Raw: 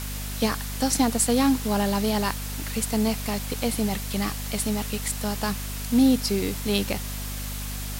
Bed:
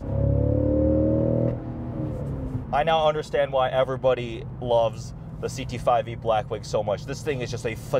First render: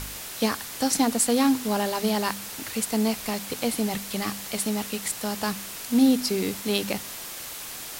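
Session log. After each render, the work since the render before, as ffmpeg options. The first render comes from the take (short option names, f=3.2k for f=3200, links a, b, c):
-af "bandreject=f=50:t=h:w=4,bandreject=f=100:t=h:w=4,bandreject=f=150:t=h:w=4,bandreject=f=200:t=h:w=4,bandreject=f=250:t=h:w=4"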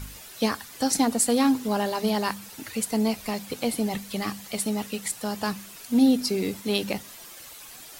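-af "afftdn=nr=10:nf=-38"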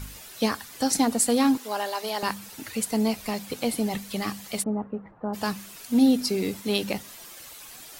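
-filter_complex "[0:a]asettb=1/sr,asplit=3[a][b][c];[a]atrim=end=1.574[d];[b]atrim=start=1.57:end=2.23,asetpts=PTS-STARTPTS,afade=t=in:d=0.004:c=qsin,afade=t=out:st=0.656:d=0.004:c=qsin,highpass=550[e];[c]atrim=start=2.226[f];[d][e]acrossfade=d=0.004:c1=hsin:c2=qsin[g];[g][f]acrossfade=d=0.004:c1=qsin:c2=hsin,asplit=3[h][i][j];[h]afade=t=out:st=4.62:d=0.02[k];[i]lowpass=f=1.2k:w=0.5412,lowpass=f=1.2k:w=1.3066,afade=t=in:st=4.62:d=0.02,afade=t=out:st=5.33:d=0.02[l];[j]afade=t=in:st=5.33:d=0.02[m];[k][l][m]amix=inputs=3:normalize=0"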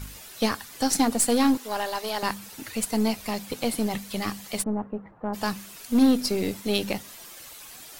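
-af "aeval=exprs='0.335*(cos(1*acos(clip(val(0)/0.335,-1,1)))-cos(1*PI/2))+0.0168*(cos(8*acos(clip(val(0)/0.335,-1,1)))-cos(8*PI/2))':c=same"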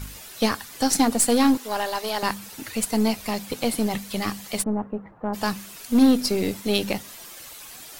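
-af "volume=2.5dB"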